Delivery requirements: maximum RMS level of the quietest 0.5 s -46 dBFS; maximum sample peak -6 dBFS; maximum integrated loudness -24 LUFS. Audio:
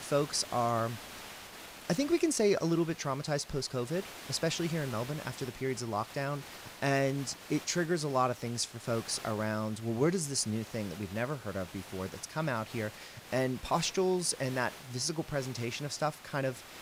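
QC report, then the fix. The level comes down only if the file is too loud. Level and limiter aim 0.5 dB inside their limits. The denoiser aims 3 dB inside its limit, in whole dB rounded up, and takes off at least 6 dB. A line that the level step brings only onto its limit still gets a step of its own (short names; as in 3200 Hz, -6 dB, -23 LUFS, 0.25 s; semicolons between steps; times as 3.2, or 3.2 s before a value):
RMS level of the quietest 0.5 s -48 dBFS: OK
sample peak -16.0 dBFS: OK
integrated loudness -33.5 LUFS: OK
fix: none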